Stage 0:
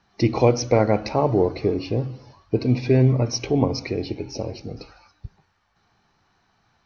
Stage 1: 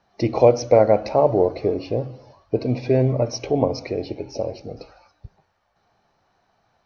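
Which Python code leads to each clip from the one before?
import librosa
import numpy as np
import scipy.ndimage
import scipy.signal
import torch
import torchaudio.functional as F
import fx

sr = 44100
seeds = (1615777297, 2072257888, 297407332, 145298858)

y = fx.peak_eq(x, sr, hz=600.0, db=11.5, octaves=0.88)
y = y * 10.0 ** (-4.0 / 20.0)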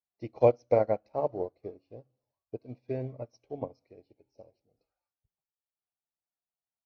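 y = fx.upward_expand(x, sr, threshold_db=-32.0, expansion=2.5)
y = y * 10.0 ** (-6.0 / 20.0)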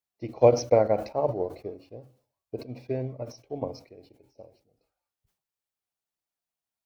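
y = fx.sustainer(x, sr, db_per_s=140.0)
y = y * 10.0 ** (3.5 / 20.0)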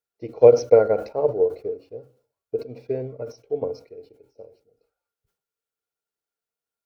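y = fx.small_body(x, sr, hz=(450.0, 1400.0), ring_ms=50, db=15)
y = y * 10.0 ** (-2.0 / 20.0)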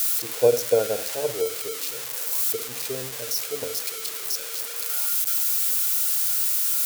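y = x + 0.5 * 10.0 ** (-10.5 / 20.0) * np.diff(np.sign(x), prepend=np.sign(x[:1]))
y = y * 10.0 ** (-6.0 / 20.0)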